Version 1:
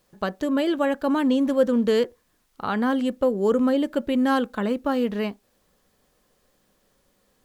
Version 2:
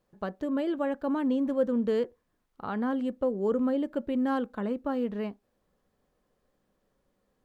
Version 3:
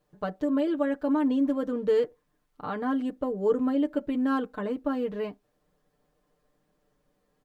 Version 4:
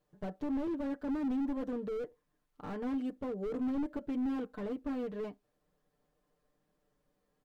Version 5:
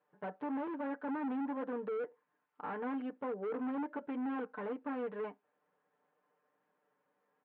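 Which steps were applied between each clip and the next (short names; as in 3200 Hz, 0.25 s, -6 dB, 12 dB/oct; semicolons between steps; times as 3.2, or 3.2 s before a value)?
high shelf 2200 Hz -12 dB; gain -6 dB
comb 6.7 ms, depth 81%
slew limiter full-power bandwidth 16 Hz; gain -6 dB
speaker cabinet 330–2600 Hz, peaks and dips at 340 Hz -6 dB, 630 Hz -4 dB, 910 Hz +6 dB, 1500 Hz +4 dB; gain +2.5 dB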